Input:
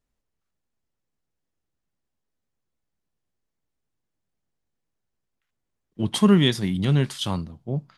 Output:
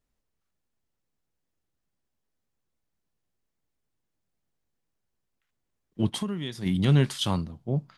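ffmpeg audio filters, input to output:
-filter_complex "[0:a]asplit=3[s0][s1][s2];[s0]afade=t=out:st=6.09:d=0.02[s3];[s1]acompressor=threshold=0.0398:ratio=20,afade=t=in:st=6.09:d=0.02,afade=t=out:st=6.65:d=0.02[s4];[s2]afade=t=in:st=6.65:d=0.02[s5];[s3][s4][s5]amix=inputs=3:normalize=0"

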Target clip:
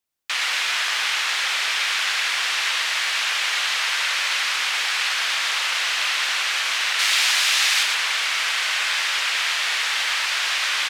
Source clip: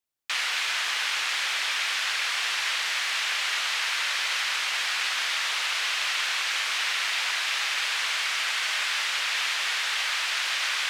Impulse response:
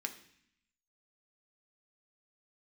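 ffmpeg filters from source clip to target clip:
-filter_complex "[0:a]asettb=1/sr,asplit=3[s0][s1][s2];[s0]atrim=end=6.994[s3];[s1]atrim=start=6.99:end=7.83,asetpts=PTS-STARTPTS,afade=t=in:d=0.004:c=qsin,afade=t=out:st=0.836:d=0.004:c=qsin,highshelf=f=3400:g=9[s4];[s2]atrim=start=7.826[s5];[s3][s4]acrossfade=d=0.004:c1=hsin:c2=qsin[s6];[s6][s5]acrossfade=d=0.004:c1=qsin:c2=hsin,aecho=1:1:116:0.562,volume=1.5"

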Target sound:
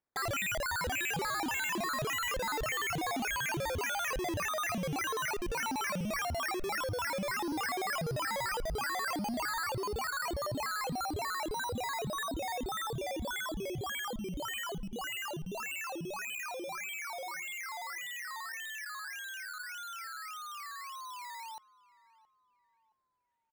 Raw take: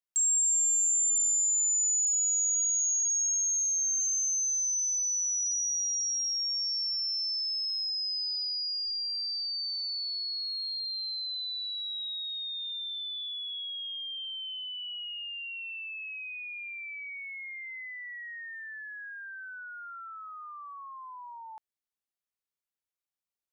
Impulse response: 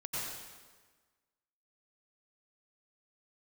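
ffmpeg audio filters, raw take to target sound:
-filter_complex "[0:a]asettb=1/sr,asplit=3[s0][s1][s2];[s0]atrim=end=7.424[s3];[s1]atrim=start=7.42:end=9.66,asetpts=PTS-STARTPTS,afade=t=in:d=0.004:c=qsin,afade=t=out:st=2.236:d=0.004:c=qsin,highshelf=f=5400:g=4.5[s4];[s2]atrim=start=9.656[s5];[s3][s4]acrossfade=d=0.004:c1=hsin:c2=qsin[s6];[s6][s5]acrossfade=d=0.004:c1=qsin:c2=hsin,acrusher=samples=12:mix=1:aa=0.000001:lfo=1:lforange=7.2:lforate=1.7,asoftclip=type=hard:threshold=0.0211,asplit=2[s7][s8];[s8]adelay=671,lowpass=f=2000:p=1,volume=0.106,asplit=2[s9][s10];[s10]adelay=671,lowpass=f=2000:p=1,volume=0.4,asplit=2[s11][s12];[s12]adelay=671,lowpass=f=2000:p=1,volume=0.4[s13];[s7][s9][s11][s13]amix=inputs=4:normalize=0"

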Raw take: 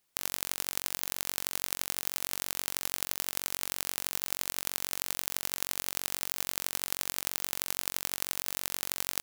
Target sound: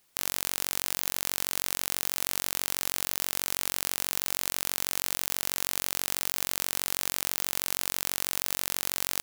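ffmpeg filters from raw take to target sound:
-af "alimiter=limit=0.299:level=0:latency=1:release=31,volume=2.66"

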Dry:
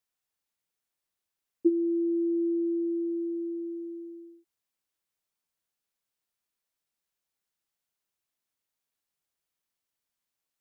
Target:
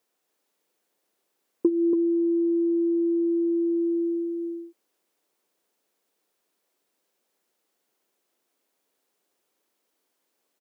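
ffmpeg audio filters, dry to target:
-af "highpass=220,equalizer=f=390:w=0.64:g=12.5,acompressor=threshold=0.0398:ratio=8,aecho=1:1:283:0.596,volume=2.37"

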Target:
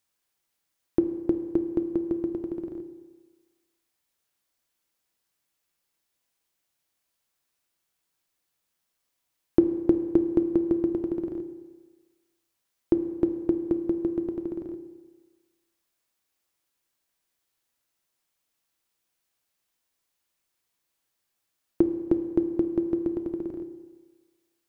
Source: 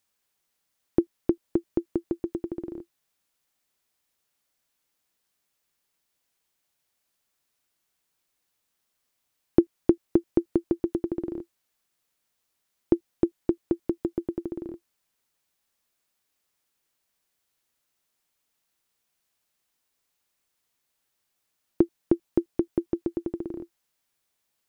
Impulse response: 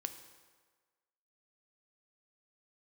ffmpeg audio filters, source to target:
-filter_complex "[1:a]atrim=start_sample=2205[s0];[0:a][s0]afir=irnorm=-1:irlink=0"

